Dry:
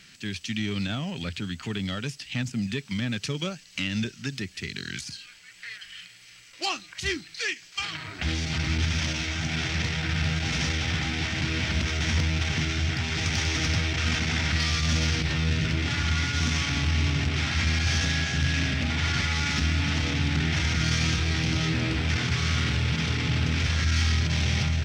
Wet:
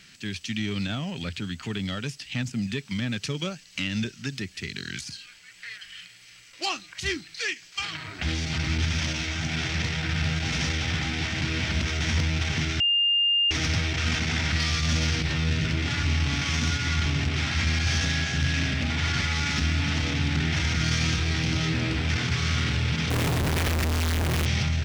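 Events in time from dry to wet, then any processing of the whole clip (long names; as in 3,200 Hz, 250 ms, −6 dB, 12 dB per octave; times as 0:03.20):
0:12.80–0:13.51: beep over 2,810 Hz −19 dBFS
0:16.05–0:17.06: reverse
0:23.10–0:24.46: comparator with hysteresis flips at −32 dBFS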